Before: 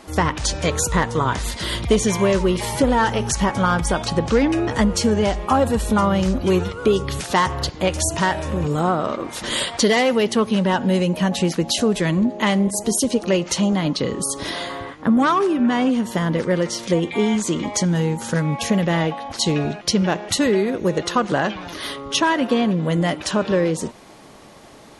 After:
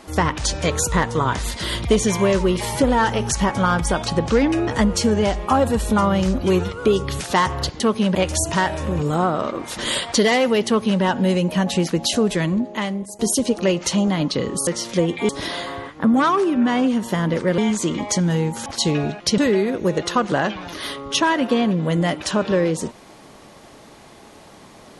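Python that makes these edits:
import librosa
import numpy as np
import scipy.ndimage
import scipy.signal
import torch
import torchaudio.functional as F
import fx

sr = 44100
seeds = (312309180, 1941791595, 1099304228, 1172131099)

y = fx.edit(x, sr, fx.duplicate(start_s=10.32, length_s=0.35, to_s=7.8),
    fx.fade_out_to(start_s=11.96, length_s=0.88, floor_db=-14.5),
    fx.move(start_s=16.61, length_s=0.62, to_s=14.32),
    fx.cut(start_s=18.31, length_s=0.96),
    fx.cut(start_s=19.99, length_s=0.39), tone=tone)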